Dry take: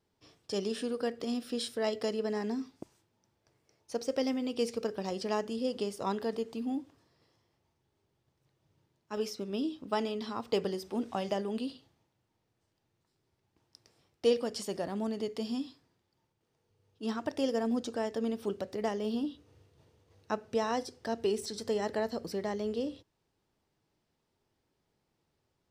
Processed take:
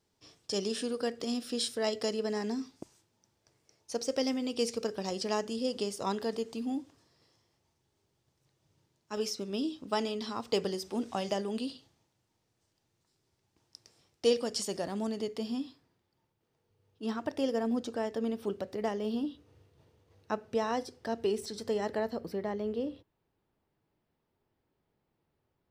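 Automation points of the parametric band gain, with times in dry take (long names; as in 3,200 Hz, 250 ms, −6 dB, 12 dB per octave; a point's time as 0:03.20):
parametric band 6,800 Hz 1.6 octaves
0:15.05 +7 dB
0:15.51 −3 dB
0:21.87 −3 dB
0:22.37 −13 dB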